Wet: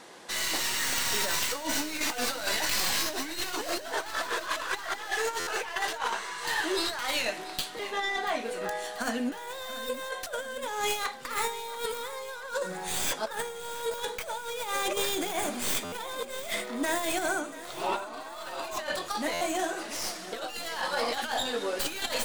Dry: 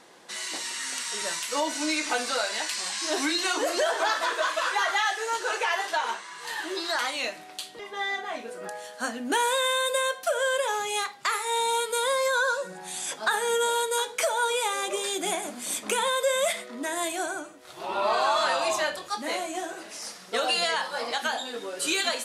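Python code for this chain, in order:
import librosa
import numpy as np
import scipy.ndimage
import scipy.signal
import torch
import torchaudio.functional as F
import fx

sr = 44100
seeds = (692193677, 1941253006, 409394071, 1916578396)

y = fx.tracing_dist(x, sr, depth_ms=0.15)
y = fx.over_compress(y, sr, threshold_db=-31.0, ratio=-0.5)
y = fx.echo_feedback(y, sr, ms=685, feedback_pct=57, wet_db=-15.5)
y = fx.buffer_glitch(y, sr, at_s=(5.39, 15.84, 19.33), block=512, repeats=6)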